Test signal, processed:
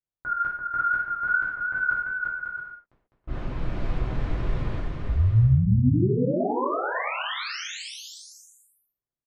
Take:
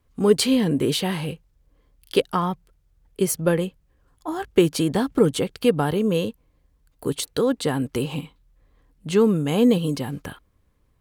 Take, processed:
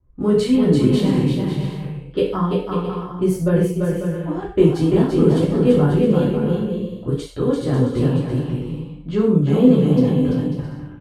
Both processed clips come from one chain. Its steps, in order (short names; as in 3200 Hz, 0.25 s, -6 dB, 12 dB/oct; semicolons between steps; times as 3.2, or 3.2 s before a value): low-pass opened by the level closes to 1400 Hz, open at -20.5 dBFS; tilt -3 dB/oct; wow and flutter 72 cents; flange 1.7 Hz, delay 1.1 ms, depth 2.2 ms, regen -89%; on a send: bouncing-ball echo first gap 0.34 s, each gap 0.6×, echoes 5; on the sum: non-linear reverb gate 0.17 s falling, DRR -6 dB; gain -4.5 dB